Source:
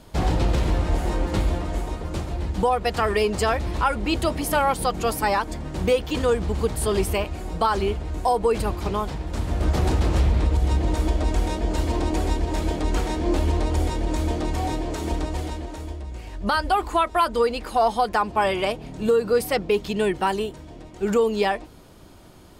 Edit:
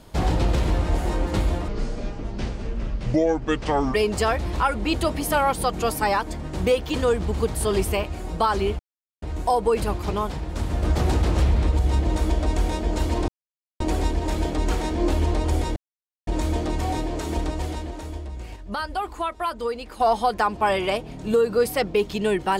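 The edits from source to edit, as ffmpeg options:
-filter_complex "[0:a]asplit=8[s0][s1][s2][s3][s4][s5][s6][s7];[s0]atrim=end=1.684[s8];[s1]atrim=start=1.68:end=3.15,asetpts=PTS-STARTPTS,asetrate=28665,aresample=44100[s9];[s2]atrim=start=3.146:end=8,asetpts=PTS-STARTPTS,afade=t=out:st=4.85:d=0.004:c=hsin,apad=pad_dur=0.43[s10];[s3]atrim=start=8:end=12.06,asetpts=PTS-STARTPTS,afade=t=in:d=0.004:c=hsin,afade=t=out:st=4.056:d=0.004:c=hsin,apad=pad_dur=0.52[s11];[s4]atrim=start=12.06:end=14.02,asetpts=PTS-STARTPTS,afade=t=in:d=0.004:c=hsin,afade=t=out:st=1.956:d=0.004:c=hsin,apad=pad_dur=0.51[s12];[s5]atrim=start=14.02:end=16.312,asetpts=PTS-STARTPTS,afade=t=in:d=0.004:c=hsin[s13];[s6]atrim=start=16.308:end=17.752,asetpts=PTS-STARTPTS,volume=0.473[s14];[s7]atrim=start=17.748[s15];[s8][s9]acrossfade=d=0.004:c1=hsin:c2=hsin[s16];[s10][s11][s12][s13]concat=n=4:v=0:a=1[s17];[s16][s17]acrossfade=d=0.004:c1=hsin:c2=hsin[s18];[s18][s14]acrossfade=d=0.004:c1=hsin:c2=hsin[s19];[s19][s15]acrossfade=d=0.004:c1=hsin:c2=hsin"

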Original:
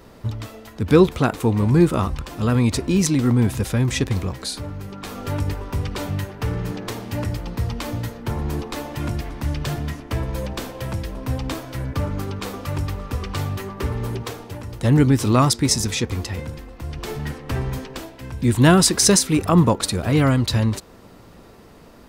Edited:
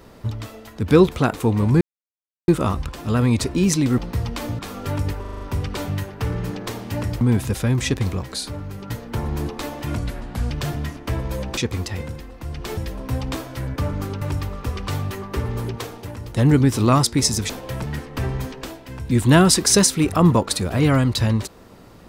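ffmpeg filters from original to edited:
-filter_complex "[0:a]asplit=18[s0][s1][s2][s3][s4][s5][s6][s7][s8][s9][s10][s11][s12][s13][s14][s15][s16][s17];[s0]atrim=end=1.81,asetpts=PTS-STARTPTS,afade=t=out:st=1.806:d=0.004:c=hsin,apad=pad_dur=0.67[s18];[s1]atrim=start=1.81:end=3.312,asetpts=PTS-STARTPTS,afade=t=in:d=0.004:c=hsin[s19];[s2]atrim=start=7.418:end=8.032[s20];[s3]atrim=start=4.998:end=5.662[s21];[s4]atrim=start=5.618:end=5.662[s22];[s5]atrim=start=5.618:end=5.662[s23];[s6]atrim=start=5.618:end=5.662[s24];[s7]atrim=start=5.618:end=5.662[s25];[s8]atrim=start=5.618:end=7.422[s26];[s9]atrim=start=3.308:end=5.002[s27];[s10]atrim=start=8.028:end=9.114[s28];[s11]atrim=start=9.11:end=9.54,asetpts=PTS-STARTPTS,asetrate=36162,aresample=44100[s29];[s12]atrim=start=9.536:end=10.612[s30];[s13]atrim=start=15.958:end=17.162[s31];[s14]atrim=start=10.948:end=12.392[s32];[s15]atrim=start=12.678:end=15.962[s33];[s16]atrim=start=10.608:end=10.952[s34];[s17]atrim=start=17.158[s35];[s18][s19]concat=n=2:v=0:a=1[s36];[s36][s20]acrossfade=d=0.004:c1=hsin:c2=hsin[s37];[s37][s21]acrossfade=d=0.004:c1=hsin:c2=hsin[s38];[s38][s22]acrossfade=d=0.004:c1=hsin:c2=hsin[s39];[s39][s23]acrossfade=d=0.004:c1=hsin:c2=hsin[s40];[s40][s24]acrossfade=d=0.004:c1=hsin:c2=hsin[s41];[s41][s25]acrossfade=d=0.004:c1=hsin:c2=hsin[s42];[s42][s26]acrossfade=d=0.004:c1=hsin:c2=hsin[s43];[s43][s27]acrossfade=d=0.004:c1=hsin:c2=hsin[s44];[s44][s28]acrossfade=d=0.004:c1=hsin:c2=hsin[s45];[s45][s29]acrossfade=d=0.004:c1=hsin:c2=hsin[s46];[s46][s30]acrossfade=d=0.004:c1=hsin:c2=hsin[s47];[s47][s31]acrossfade=d=0.004:c1=hsin:c2=hsin[s48];[s48][s32]acrossfade=d=0.004:c1=hsin:c2=hsin[s49];[s49][s33]acrossfade=d=0.004:c1=hsin:c2=hsin[s50];[s50][s34]acrossfade=d=0.004:c1=hsin:c2=hsin[s51];[s51][s35]acrossfade=d=0.004:c1=hsin:c2=hsin"

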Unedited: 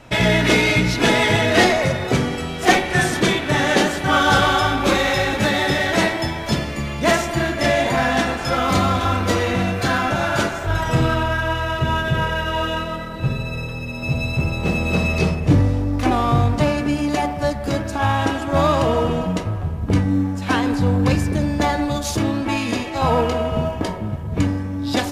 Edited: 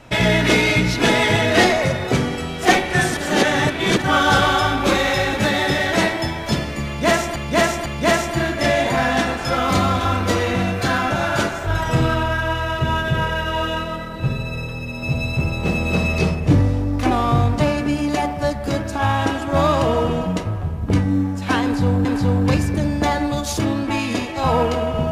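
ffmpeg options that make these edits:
-filter_complex "[0:a]asplit=6[s0][s1][s2][s3][s4][s5];[s0]atrim=end=3.172[s6];[s1]atrim=start=3.168:end=4.022,asetpts=PTS-STARTPTS,areverse[s7];[s2]atrim=start=4.018:end=7.362[s8];[s3]atrim=start=6.858:end=7.362[s9];[s4]atrim=start=6.858:end=21.052[s10];[s5]atrim=start=20.628[s11];[s6][s7]acrossfade=d=0.004:c1=hsin:c2=hsin[s12];[s12][s8]acrossfade=d=0.004:c1=hsin:c2=hsin[s13];[s13][s9]acrossfade=d=0.004:c1=hsin:c2=hsin[s14];[s14][s10]acrossfade=d=0.004:c1=hsin:c2=hsin[s15];[s15][s11]acrossfade=d=0.004:c1=hsin:c2=hsin"

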